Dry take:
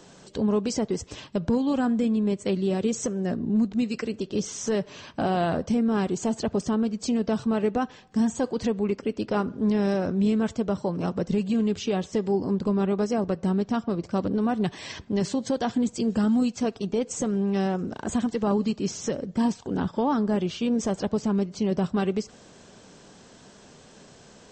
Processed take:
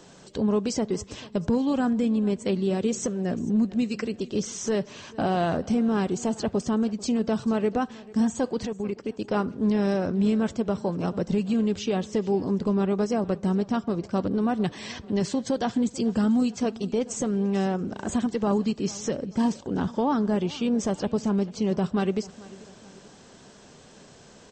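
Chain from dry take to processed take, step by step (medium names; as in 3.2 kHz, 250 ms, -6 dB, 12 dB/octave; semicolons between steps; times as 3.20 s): 8.65–9.31 s: level held to a coarse grid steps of 14 dB; on a send: feedback delay 441 ms, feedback 42%, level -20.5 dB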